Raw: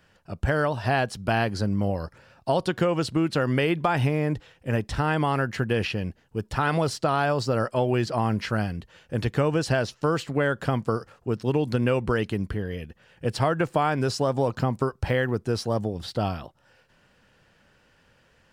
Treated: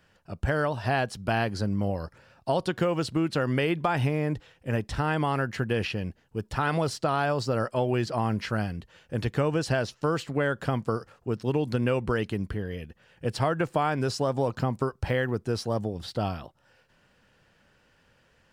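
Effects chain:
0:02.77–0:03.18: floating-point word with a short mantissa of 6 bits
level −2.5 dB

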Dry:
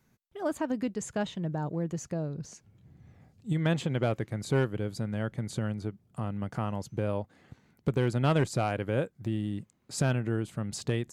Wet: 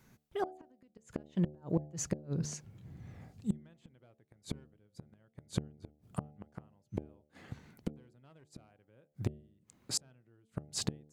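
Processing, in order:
gate with flip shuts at −25 dBFS, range −40 dB
hum removal 74.56 Hz, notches 11
level +5.5 dB

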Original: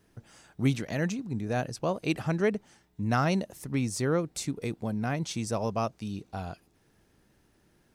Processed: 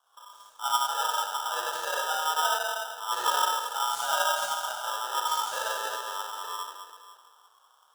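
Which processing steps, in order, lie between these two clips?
Chebyshev band-stop filter 610–4,200 Hz, order 4
low-shelf EQ 77 Hz +11.5 dB
mains-hum notches 60/120/180/240/300/360/420 Hz
convolution reverb RT60 2.0 s, pre-delay 17 ms, DRR −7 dB
ring modulator with a square carrier 1,100 Hz
level −7.5 dB

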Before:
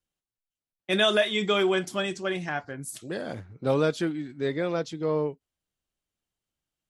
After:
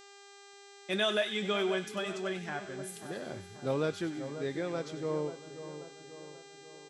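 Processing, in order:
repeating echo 556 ms, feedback 41%, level −21 dB
hum with harmonics 400 Hz, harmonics 20, −47 dBFS −3 dB per octave
echo with a time of its own for lows and highs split 1,400 Hz, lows 535 ms, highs 96 ms, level −11 dB
level −7.5 dB

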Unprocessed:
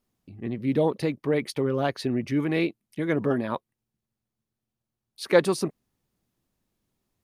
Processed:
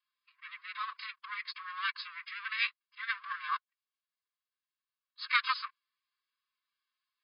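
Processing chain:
lower of the sound and its delayed copy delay 2.5 ms
phase-vocoder pitch shift with formants kept +5.5 semitones
linear-phase brick-wall band-pass 1,000–5,100 Hz

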